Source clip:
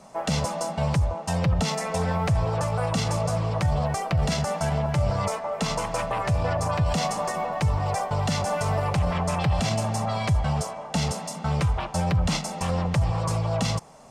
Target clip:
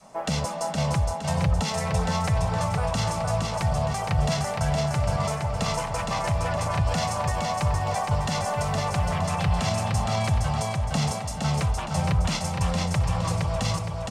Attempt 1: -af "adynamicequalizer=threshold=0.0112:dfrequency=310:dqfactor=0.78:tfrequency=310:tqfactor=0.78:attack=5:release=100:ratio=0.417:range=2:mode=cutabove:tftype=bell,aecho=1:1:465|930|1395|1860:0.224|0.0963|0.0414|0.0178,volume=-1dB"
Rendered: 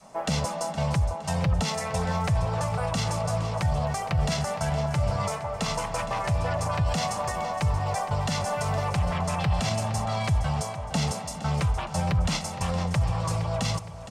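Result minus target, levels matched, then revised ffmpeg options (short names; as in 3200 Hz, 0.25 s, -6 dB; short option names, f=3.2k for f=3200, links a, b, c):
echo-to-direct -9.5 dB
-af "adynamicequalizer=threshold=0.0112:dfrequency=310:dqfactor=0.78:tfrequency=310:tqfactor=0.78:attack=5:release=100:ratio=0.417:range=2:mode=cutabove:tftype=bell,aecho=1:1:465|930|1395|1860|2325:0.668|0.287|0.124|0.0531|0.0228,volume=-1dB"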